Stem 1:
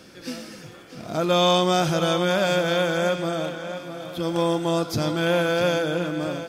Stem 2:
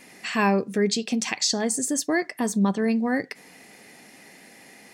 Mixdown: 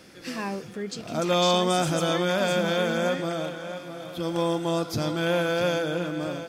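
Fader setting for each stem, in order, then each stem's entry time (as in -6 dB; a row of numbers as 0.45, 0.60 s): -3.0, -11.0 dB; 0.00, 0.00 s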